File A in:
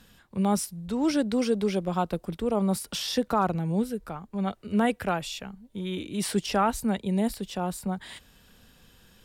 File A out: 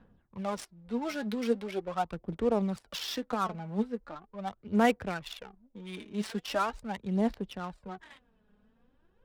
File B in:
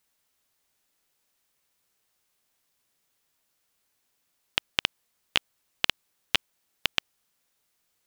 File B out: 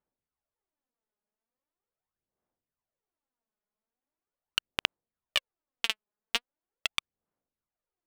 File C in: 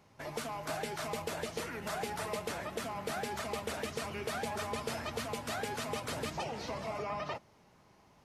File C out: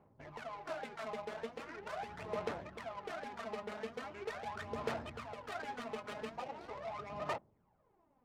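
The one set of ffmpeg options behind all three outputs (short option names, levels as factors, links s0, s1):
-af "acrusher=bits=8:mode=log:mix=0:aa=0.000001,aphaser=in_gain=1:out_gain=1:delay=4.8:decay=0.65:speed=0.41:type=sinusoidal,adynamicsmooth=sensitivity=6:basefreq=830,lowshelf=f=340:g=-7.5,volume=0.531"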